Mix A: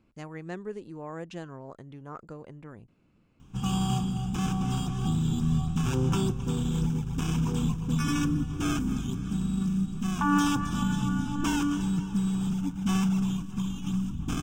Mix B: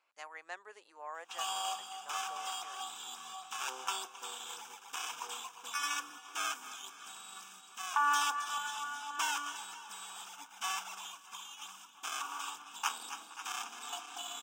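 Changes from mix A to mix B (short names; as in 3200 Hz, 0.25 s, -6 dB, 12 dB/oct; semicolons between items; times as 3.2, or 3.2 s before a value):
background: entry -2.25 s; master: add HPF 730 Hz 24 dB/oct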